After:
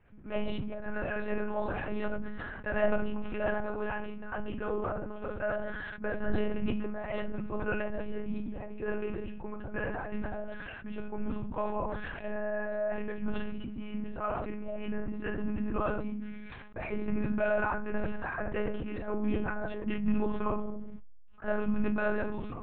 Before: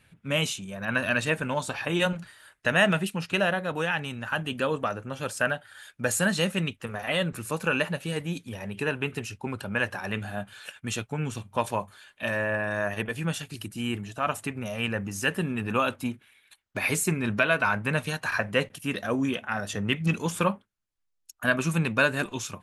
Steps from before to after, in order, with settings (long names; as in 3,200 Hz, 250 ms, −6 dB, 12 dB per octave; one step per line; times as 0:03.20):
mu-law and A-law mismatch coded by mu
low-pass filter 1,300 Hz 12 dB per octave
rectangular room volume 280 cubic metres, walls furnished, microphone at 1.5 metres
one-pitch LPC vocoder at 8 kHz 210 Hz
level that may fall only so fast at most 26 dB per second
level −8.5 dB